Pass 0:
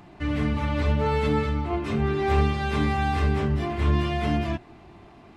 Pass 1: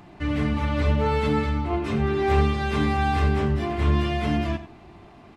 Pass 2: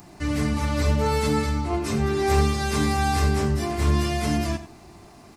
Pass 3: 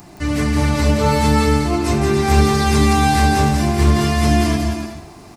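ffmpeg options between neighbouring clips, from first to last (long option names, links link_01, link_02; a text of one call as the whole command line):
ffmpeg -i in.wav -af "aecho=1:1:92:0.211,volume=1dB" out.wav
ffmpeg -i in.wav -af "aexciter=amount=3.7:drive=8.6:freq=4600" out.wav
ffmpeg -i in.wav -af "aecho=1:1:170|289|372.3|430.6|471.4:0.631|0.398|0.251|0.158|0.1,volume=5.5dB" out.wav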